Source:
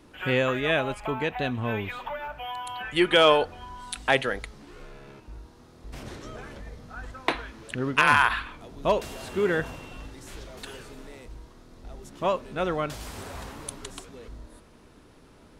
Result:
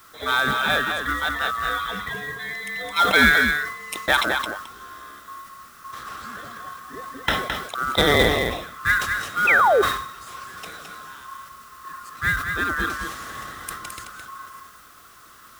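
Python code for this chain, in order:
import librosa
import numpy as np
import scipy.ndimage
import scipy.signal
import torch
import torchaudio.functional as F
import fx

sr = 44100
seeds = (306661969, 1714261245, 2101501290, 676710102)

p1 = fx.band_swap(x, sr, width_hz=1000)
p2 = scipy.signal.sosfilt(scipy.signal.butter(4, 47.0, 'highpass', fs=sr, output='sos'), p1)
p3 = fx.quant_dither(p2, sr, seeds[0], bits=8, dither='triangular')
p4 = p2 + F.gain(torch.from_numpy(p3), -4.0).numpy()
p5 = fx.low_shelf(p4, sr, hz=88.0, db=6.0)
p6 = fx.quant_float(p5, sr, bits=2)
p7 = p6 + 10.0 ** (-6.0 / 20.0) * np.pad(p6, (int(215 * sr / 1000.0), 0))[:len(p6)]
p8 = fx.spec_paint(p7, sr, seeds[1], shape='fall', start_s=9.47, length_s=0.35, low_hz=370.0, high_hz=2700.0, level_db=-14.0)
p9 = fx.sustainer(p8, sr, db_per_s=73.0)
y = F.gain(torch.from_numpy(p9), -2.0).numpy()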